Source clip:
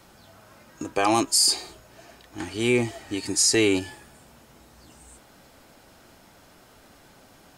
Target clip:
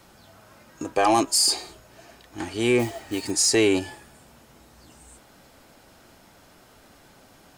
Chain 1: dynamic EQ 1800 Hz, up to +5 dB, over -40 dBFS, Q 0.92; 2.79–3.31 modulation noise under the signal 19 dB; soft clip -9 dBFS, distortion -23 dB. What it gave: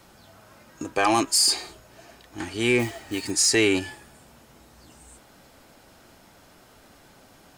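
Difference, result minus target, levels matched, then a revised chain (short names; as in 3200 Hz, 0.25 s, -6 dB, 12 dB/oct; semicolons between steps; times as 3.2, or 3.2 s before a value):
2000 Hz band +3.5 dB
dynamic EQ 660 Hz, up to +5 dB, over -40 dBFS, Q 0.92; 2.79–3.31 modulation noise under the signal 19 dB; soft clip -9 dBFS, distortion -21 dB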